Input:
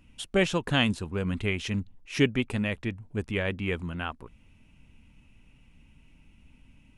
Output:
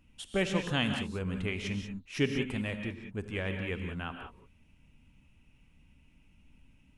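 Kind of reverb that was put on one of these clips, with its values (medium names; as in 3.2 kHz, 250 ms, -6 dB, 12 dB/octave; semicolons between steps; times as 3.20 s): gated-style reverb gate 210 ms rising, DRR 5 dB; trim -6 dB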